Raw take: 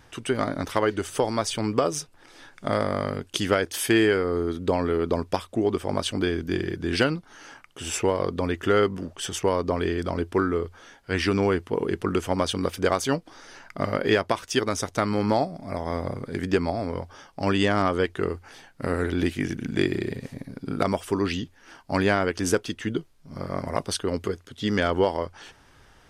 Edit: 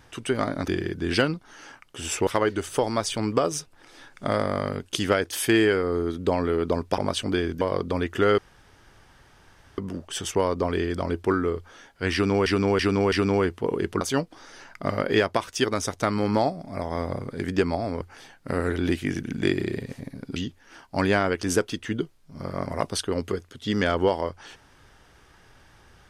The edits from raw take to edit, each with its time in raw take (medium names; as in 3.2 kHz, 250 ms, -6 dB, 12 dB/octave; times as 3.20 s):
5.39–5.87 s: delete
6.50–8.09 s: move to 0.68 s
8.86 s: insert room tone 1.40 s
11.21–11.54 s: loop, 4 plays
12.10–12.96 s: delete
16.96–18.35 s: delete
20.70–21.32 s: delete